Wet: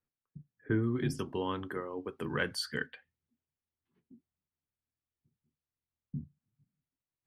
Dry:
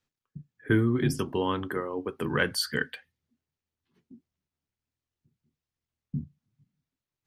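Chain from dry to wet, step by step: Bessel low-pass 1500 Hz, order 2, from 0.82 s 10000 Hz, from 2.86 s 2400 Hz; gain -6.5 dB

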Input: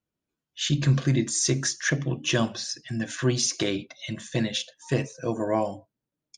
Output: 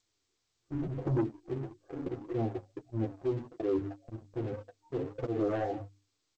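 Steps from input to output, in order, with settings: steep low-pass 760 Hz 48 dB/oct; low shelf 100 Hz +3.5 dB; notches 50/100/150/200/250/300 Hz; comb 2.5 ms, depth 98%; 1.91–4.32 dynamic EQ 140 Hz, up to -7 dB, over -41 dBFS, Q 4.3; auto swell 0.263 s; sample leveller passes 2; compressor 4:1, threshold -29 dBFS, peak gain reduction 12.5 dB; soft clip -26.5 dBFS, distortion -16 dB; flange 1.7 Hz, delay 8.3 ms, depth 2.9 ms, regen +12%; gain +4.5 dB; G.722 64 kbps 16000 Hz

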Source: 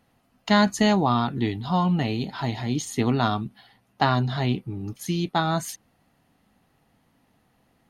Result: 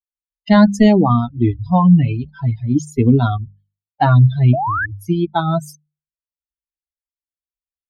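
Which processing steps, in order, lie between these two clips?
per-bin expansion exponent 3; tilt -3 dB/oct; notches 50/100/150/200 Hz; in parallel at +2 dB: limiter -18.5 dBFS, peak gain reduction 10 dB; on the sum: painted sound rise, 4.53–4.86, 600–1800 Hz -24 dBFS; gain +4.5 dB

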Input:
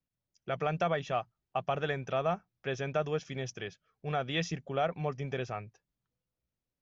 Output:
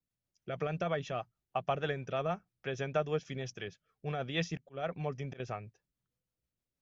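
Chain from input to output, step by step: 4.57–5.4 auto swell 0.193 s; rotary speaker horn 6.3 Hz

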